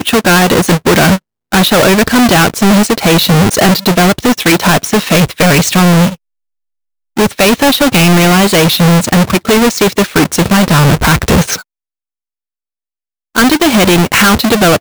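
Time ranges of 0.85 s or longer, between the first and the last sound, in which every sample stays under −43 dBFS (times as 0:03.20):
0:06.16–0:07.16
0:11.62–0:13.35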